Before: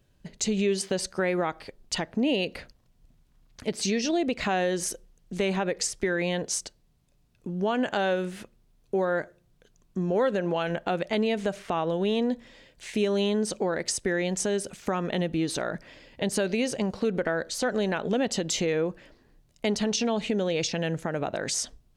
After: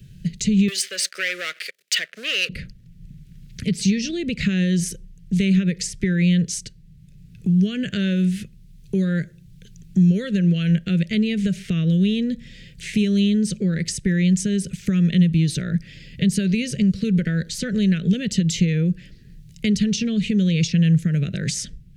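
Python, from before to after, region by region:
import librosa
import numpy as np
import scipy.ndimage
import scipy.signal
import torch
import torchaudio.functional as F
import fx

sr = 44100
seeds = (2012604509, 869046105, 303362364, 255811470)

y = fx.chain(x, sr, fx.leveller(passes=3),
    fx.highpass(hz=660.0, slope=24), at=(0.68, 2.49))
y = scipy.signal.sosfilt(scipy.signal.cheby1(2, 1.0, [360.0, 2100.0], 'bandstop', fs=sr, output='sos'), y)
y = fx.low_shelf_res(y, sr, hz=220.0, db=8.5, q=3.0)
y = fx.band_squash(y, sr, depth_pct=40)
y = y * 10.0 ** (3.5 / 20.0)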